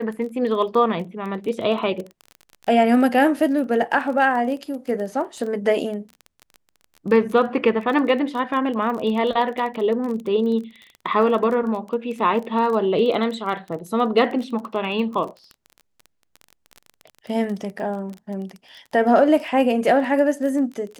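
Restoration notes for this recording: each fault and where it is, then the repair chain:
surface crackle 22 per second −29 dBFS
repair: click removal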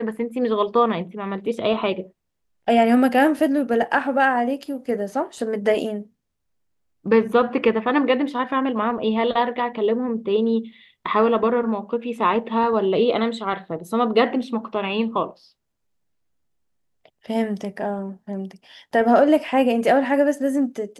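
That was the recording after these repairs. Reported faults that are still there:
none of them is left

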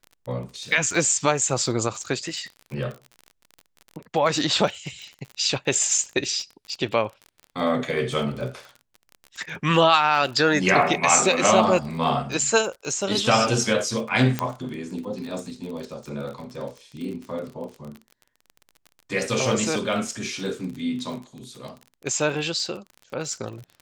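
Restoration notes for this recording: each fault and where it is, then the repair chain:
surface crackle 34 per second −32 dBFS
0:05.02: click
0:14.39: click −9 dBFS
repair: click removal

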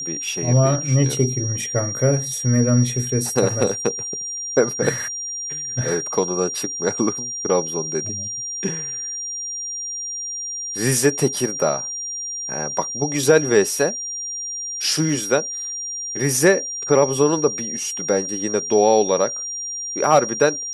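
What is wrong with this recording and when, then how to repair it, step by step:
whistle 5,700 Hz −26 dBFS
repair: notch filter 5,700 Hz, Q 30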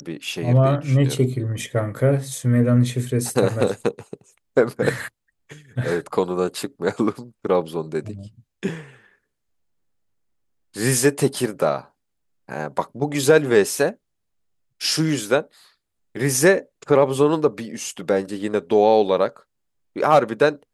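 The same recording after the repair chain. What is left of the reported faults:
none of them is left

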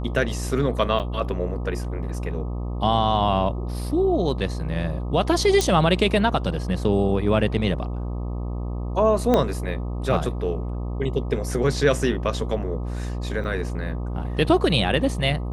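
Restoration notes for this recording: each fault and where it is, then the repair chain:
mains buzz 60 Hz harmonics 21 −28 dBFS
0:00.99–0:01.00: drop-out 8.4 ms
0:05.61: click
0:09.34: click −7 dBFS
0:13.44–0:13.45: drop-out 5.9 ms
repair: click removal
hum removal 60 Hz, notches 21
repair the gap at 0:00.99, 8.4 ms
repair the gap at 0:13.44, 5.9 ms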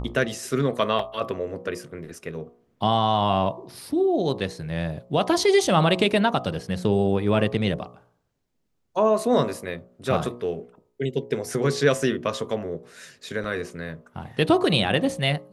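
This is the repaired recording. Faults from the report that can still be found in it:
0:09.34: click

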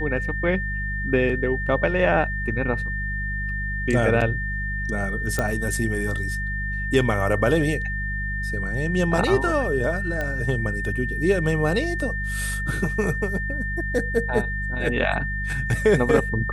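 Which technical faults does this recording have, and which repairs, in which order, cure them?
mains hum 50 Hz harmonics 4 −29 dBFS
whistle 1,800 Hz −28 dBFS
0:05.39: click −10 dBFS
0:10.21: click −15 dBFS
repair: click removal
hum removal 50 Hz, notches 4
notch filter 1,800 Hz, Q 30

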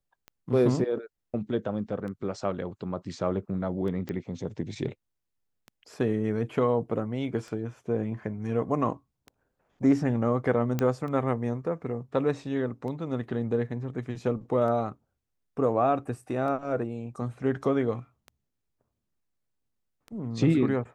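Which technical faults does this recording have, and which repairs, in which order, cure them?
scratch tick 33 1/3 rpm −28 dBFS
0:04.09: click −22 dBFS
0:10.79: click −14 dBFS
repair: click removal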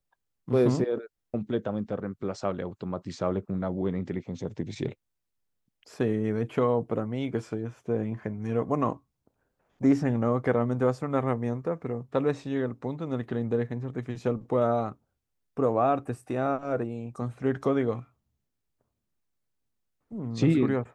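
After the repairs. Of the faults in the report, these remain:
none of them is left

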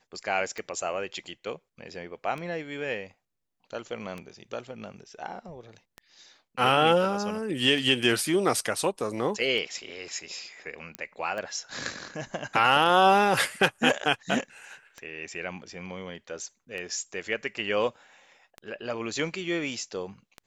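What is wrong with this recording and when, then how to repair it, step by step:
scratch tick 33 1/3 rpm −23 dBFS
0:10.95: click −17 dBFS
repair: click removal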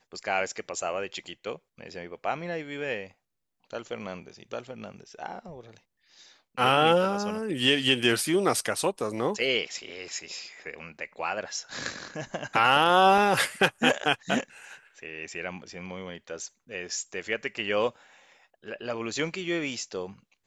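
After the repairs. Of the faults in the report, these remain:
none of them is left

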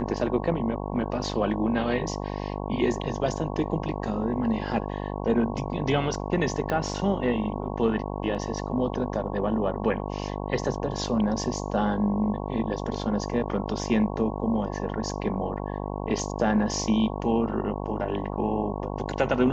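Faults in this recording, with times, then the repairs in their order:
mains buzz 50 Hz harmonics 22 −32 dBFS
0:06.70: click −15 dBFS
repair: click removal
hum removal 50 Hz, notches 22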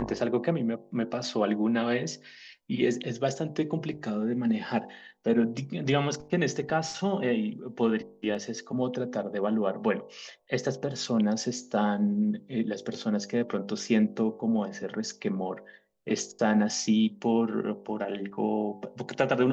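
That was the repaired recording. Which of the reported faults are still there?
0:06.70: click

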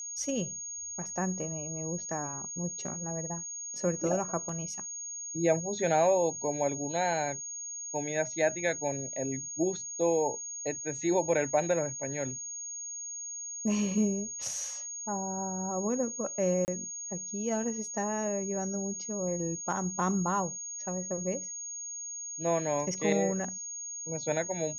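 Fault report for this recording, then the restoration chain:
whistle 6,600 Hz −37 dBFS
0:04.49: drop-out 3.3 ms
0:16.65–0:16.68: drop-out 29 ms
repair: notch filter 6,600 Hz, Q 30
repair the gap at 0:04.49, 3.3 ms
repair the gap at 0:16.65, 29 ms

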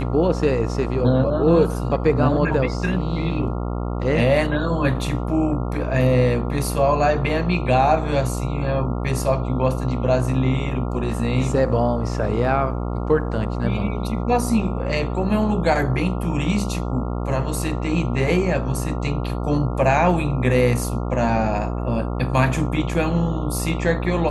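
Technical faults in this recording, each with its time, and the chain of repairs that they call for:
mains buzz 60 Hz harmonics 23 −25 dBFS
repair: hum removal 60 Hz, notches 23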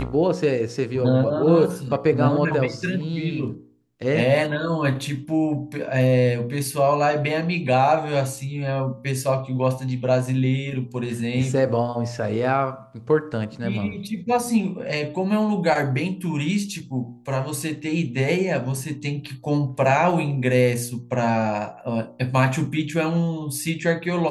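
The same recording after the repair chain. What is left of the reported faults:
none of them is left

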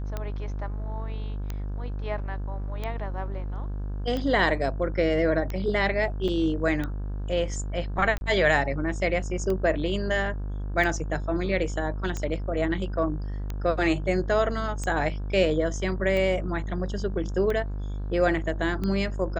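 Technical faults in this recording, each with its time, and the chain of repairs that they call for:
mains buzz 50 Hz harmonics 34 −31 dBFS
scratch tick 45 rpm −18 dBFS
0:06.28–0:06.29: drop-out 5.2 ms
0:08.18–0:08.21: drop-out 31 ms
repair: click removal
hum removal 50 Hz, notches 34
repair the gap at 0:06.28, 5.2 ms
repair the gap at 0:08.18, 31 ms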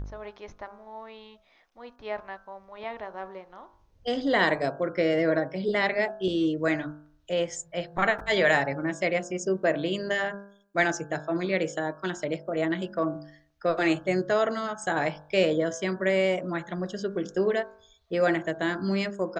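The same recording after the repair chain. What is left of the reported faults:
none of them is left

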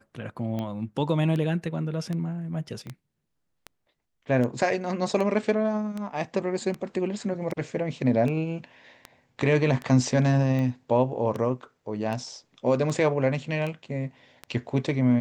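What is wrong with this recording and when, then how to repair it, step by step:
scratch tick 78 rpm −20 dBFS
0:02.87: click −28 dBFS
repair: click removal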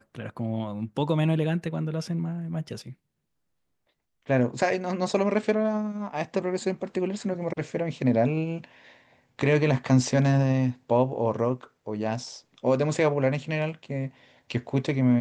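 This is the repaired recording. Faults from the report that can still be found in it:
0:02.87: click

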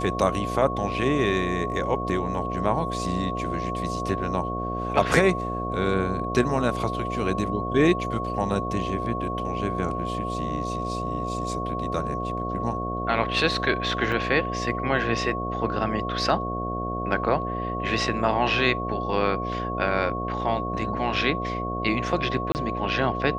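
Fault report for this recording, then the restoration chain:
mains buzz 60 Hz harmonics 12 −31 dBFS
whistle 1,100 Hz −30 dBFS
0:14.12: drop-out 2.9 ms
0:22.52–0:22.55: drop-out 29 ms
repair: hum removal 60 Hz, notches 12
notch filter 1,100 Hz, Q 30
repair the gap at 0:14.12, 2.9 ms
repair the gap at 0:22.52, 29 ms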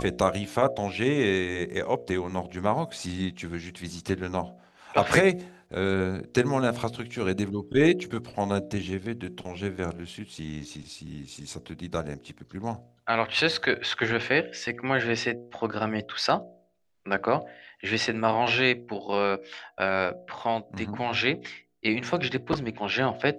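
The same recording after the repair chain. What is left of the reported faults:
none of them is left

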